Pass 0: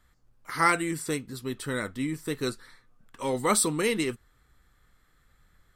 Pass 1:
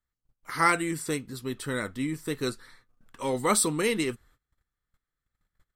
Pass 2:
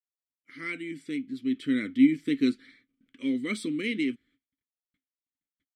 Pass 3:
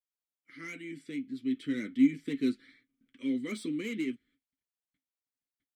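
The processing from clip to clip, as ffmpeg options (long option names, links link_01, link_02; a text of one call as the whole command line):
ffmpeg -i in.wav -af "agate=range=-23dB:threshold=-57dB:ratio=16:detection=peak" out.wav
ffmpeg -i in.wav -filter_complex "[0:a]dynaudnorm=framelen=280:gausssize=5:maxgain=16dB,agate=range=-33dB:threshold=-52dB:ratio=3:detection=peak,asplit=3[link_01][link_02][link_03];[link_01]bandpass=frequency=270:width_type=q:width=8,volume=0dB[link_04];[link_02]bandpass=frequency=2290:width_type=q:width=8,volume=-6dB[link_05];[link_03]bandpass=frequency=3010:width_type=q:width=8,volume=-9dB[link_06];[link_04][link_05][link_06]amix=inputs=3:normalize=0" out.wav
ffmpeg -i in.wav -filter_complex "[0:a]flanger=delay=4.7:depth=3.4:regen=-53:speed=0.46:shape=sinusoidal,acrossover=split=290|960[link_01][link_02][link_03];[link_03]asoftclip=type=tanh:threshold=-39dB[link_04];[link_01][link_02][link_04]amix=inputs=3:normalize=0" out.wav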